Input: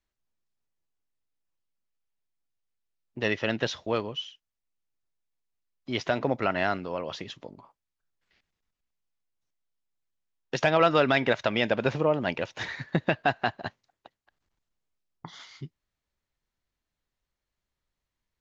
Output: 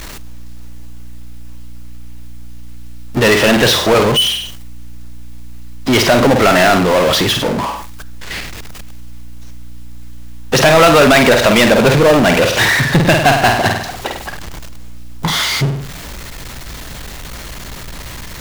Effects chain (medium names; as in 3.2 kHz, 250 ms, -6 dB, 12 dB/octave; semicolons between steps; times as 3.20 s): flutter echo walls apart 8.6 m, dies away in 0.28 s; power-law waveshaper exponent 0.35; hum 60 Hz, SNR 22 dB; trim +6 dB